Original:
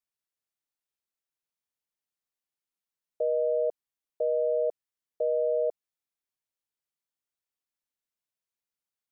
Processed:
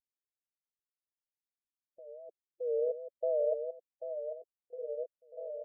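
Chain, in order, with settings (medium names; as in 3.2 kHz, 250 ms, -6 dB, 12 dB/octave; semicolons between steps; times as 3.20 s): wow and flutter 100 cents; low-pass sweep 290 Hz -> 610 Hz, 3.01–5.27 s; time stretch by phase-locked vocoder 0.62×; on a send: bouncing-ball echo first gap 790 ms, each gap 0.9×, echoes 5; on the sum: Shepard-style flanger rising 0.47 Hz; trim -7.5 dB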